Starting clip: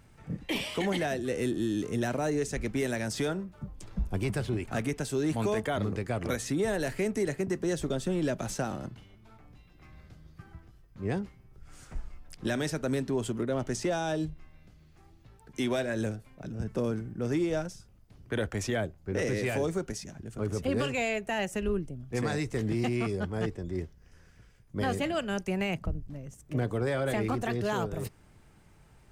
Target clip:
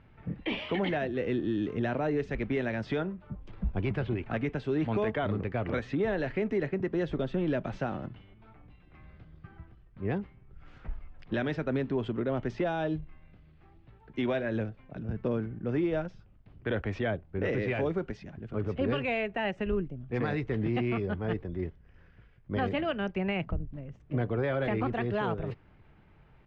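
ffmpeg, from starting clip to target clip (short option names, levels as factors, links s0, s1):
-af "atempo=1.1,lowpass=f=3200:w=0.5412,lowpass=f=3200:w=1.3066"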